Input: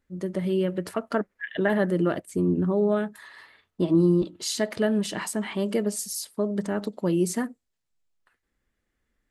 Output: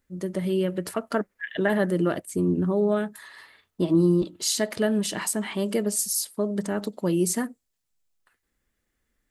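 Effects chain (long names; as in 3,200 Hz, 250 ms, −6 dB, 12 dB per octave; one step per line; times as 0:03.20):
high-shelf EQ 6,000 Hz +9 dB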